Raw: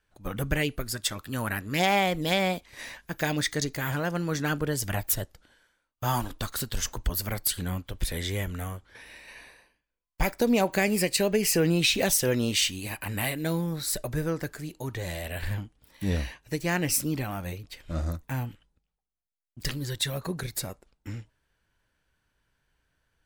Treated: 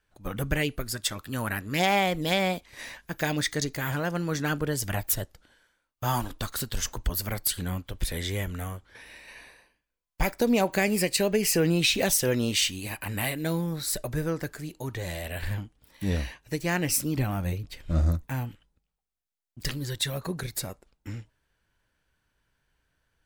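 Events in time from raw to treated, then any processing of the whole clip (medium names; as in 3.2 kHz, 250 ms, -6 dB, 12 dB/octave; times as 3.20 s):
17.17–18.27 s: bass shelf 280 Hz +8 dB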